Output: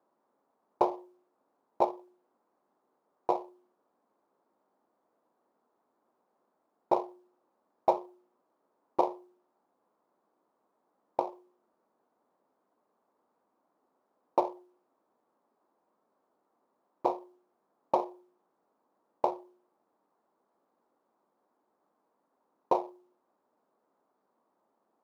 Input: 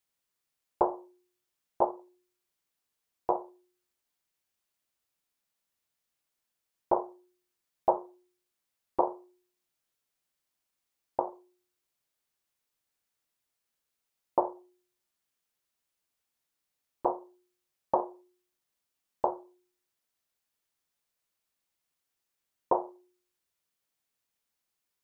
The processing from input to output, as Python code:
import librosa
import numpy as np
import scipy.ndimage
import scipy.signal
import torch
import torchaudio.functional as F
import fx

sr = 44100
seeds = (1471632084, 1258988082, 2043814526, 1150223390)

y = scipy.signal.medfilt(x, 15)
y = fx.dmg_noise_band(y, sr, seeds[0], low_hz=210.0, high_hz=1100.0, level_db=-77.0)
y = scipy.signal.sosfilt(scipy.signal.butter(2, 95.0, 'highpass', fs=sr, output='sos'), y)